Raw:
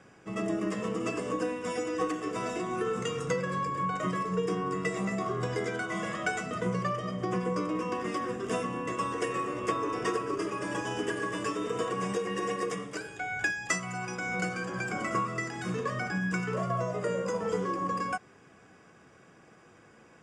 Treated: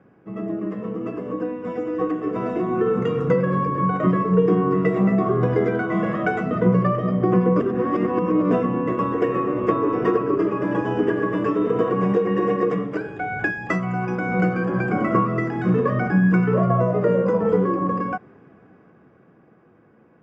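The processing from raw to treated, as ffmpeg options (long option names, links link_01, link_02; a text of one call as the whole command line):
ffmpeg -i in.wav -filter_complex "[0:a]asplit=3[link_01][link_02][link_03];[link_01]atrim=end=7.602[link_04];[link_02]atrim=start=7.598:end=8.512,asetpts=PTS-STARTPTS,areverse[link_05];[link_03]atrim=start=8.508[link_06];[link_04][link_05]acrossfade=duration=0.004:curve1=hsin:curve2=hsin[link_07];[link_07][link_06]acrossfade=duration=0.004:curve1=hsin:curve2=hsin,lowpass=1800,equalizer=frequency=230:width=0.44:gain=8.5,dynaudnorm=framelen=220:gausssize=21:maxgain=12dB,volume=-3.5dB" out.wav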